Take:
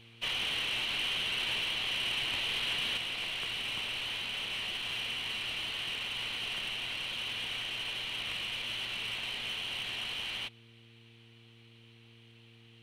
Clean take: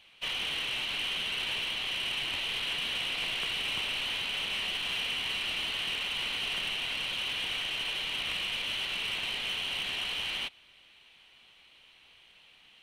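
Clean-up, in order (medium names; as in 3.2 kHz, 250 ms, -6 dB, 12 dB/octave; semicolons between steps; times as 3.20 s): de-hum 115.1 Hz, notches 4; trim 0 dB, from 2.97 s +3.5 dB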